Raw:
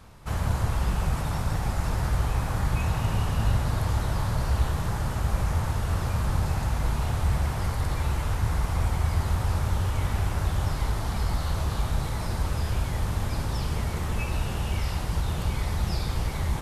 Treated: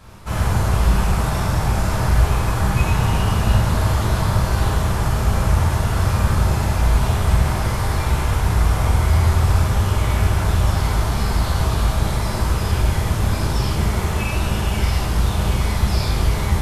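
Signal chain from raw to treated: gated-style reverb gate 130 ms flat, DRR -4.5 dB; trim +3.5 dB

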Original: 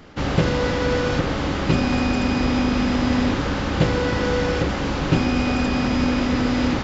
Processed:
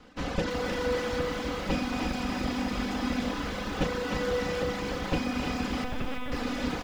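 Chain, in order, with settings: comb filter that takes the minimum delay 4 ms; reverb removal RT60 1.1 s; doubling 35 ms -13.5 dB; thinning echo 301 ms, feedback 42%, high-pass 420 Hz, level -4 dB; 5.84–6.32 s: LPC vocoder at 8 kHz pitch kept; bit-crushed delay 335 ms, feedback 35%, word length 7-bit, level -9 dB; trim -7 dB

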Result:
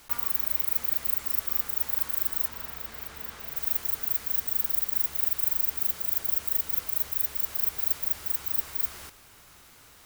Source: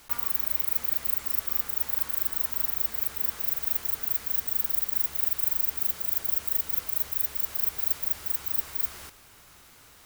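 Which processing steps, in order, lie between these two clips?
2.48–3.56 s: treble shelf 7.2 kHz -11.5 dB

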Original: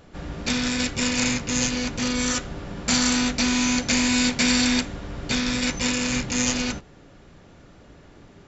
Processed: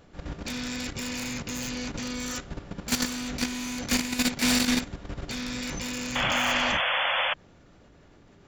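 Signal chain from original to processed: wavefolder -17 dBFS; level held to a coarse grid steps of 11 dB; painted sound noise, 6.15–7.34 s, 490–3500 Hz -26 dBFS

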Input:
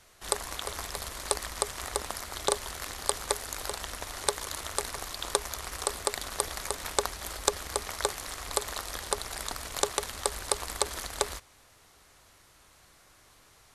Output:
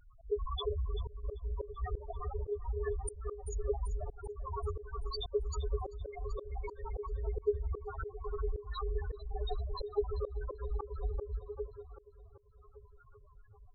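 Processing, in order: loudest bins only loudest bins 2; two-band feedback delay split 370 Hz, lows 286 ms, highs 388 ms, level -13.5 dB; slow attack 231 ms; trim +13 dB

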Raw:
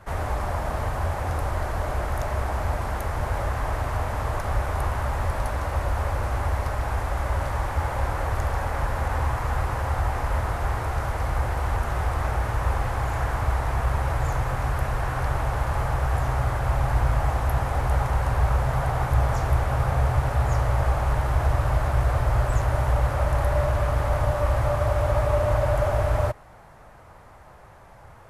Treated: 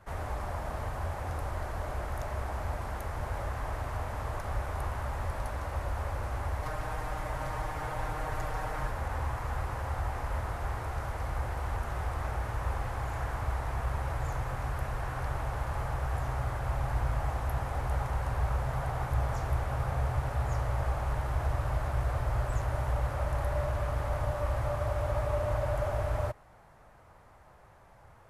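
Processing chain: 6.62–8.91 s: comb 6.5 ms, depth 78%; trim -8.5 dB

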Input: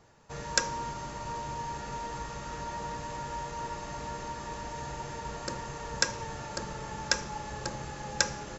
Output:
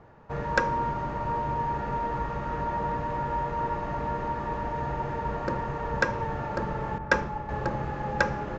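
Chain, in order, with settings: low-pass 1.6 kHz 12 dB/octave; 6.98–7.49 s: three bands expanded up and down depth 100%; trim +8.5 dB

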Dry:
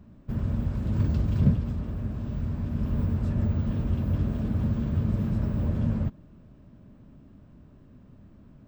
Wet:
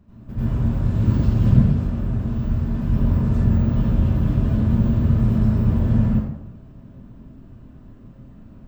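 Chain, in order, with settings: plate-style reverb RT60 0.81 s, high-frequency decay 0.7×, pre-delay 75 ms, DRR -10 dB; trim -3.5 dB

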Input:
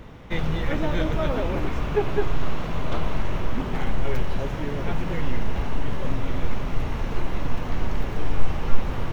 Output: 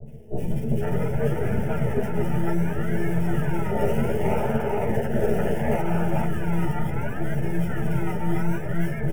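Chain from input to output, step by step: 3.65–5.75 s: spectral contrast reduction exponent 0.43; compression, threshold -20 dBFS, peak gain reduction 13.5 dB; frequency shift -170 Hz; decimation with a swept rate 32×, swing 60% 0.68 Hz; half-wave rectifier; static phaser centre 1.1 kHz, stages 6; three bands offset in time lows, highs, mids 60/500 ms, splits 600/2800 Hz; reverberation RT60 0.15 s, pre-delay 3 ms, DRR 4 dB; three-phase chorus

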